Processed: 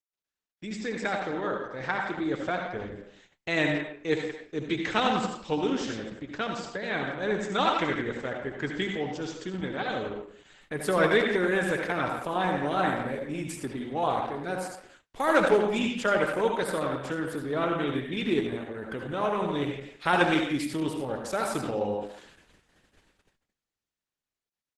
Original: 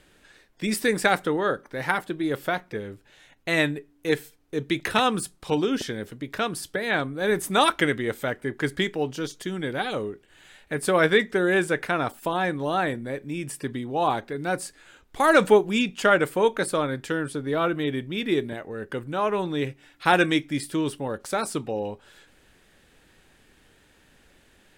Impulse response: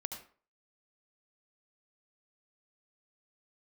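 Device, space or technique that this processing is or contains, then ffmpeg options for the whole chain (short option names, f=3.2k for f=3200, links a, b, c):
speakerphone in a meeting room: -filter_complex "[1:a]atrim=start_sample=2205[a];[0:a][a]afir=irnorm=-1:irlink=0,asplit=2[b][c];[c]adelay=170,highpass=300,lowpass=3.4k,asoftclip=type=hard:threshold=-15dB,volume=-9dB[d];[b][d]amix=inputs=2:normalize=0,dynaudnorm=f=110:g=31:m=15.5dB,agate=range=-35dB:threshold=-45dB:ratio=16:detection=peak,volume=-9dB" -ar 48000 -c:a libopus -b:a 12k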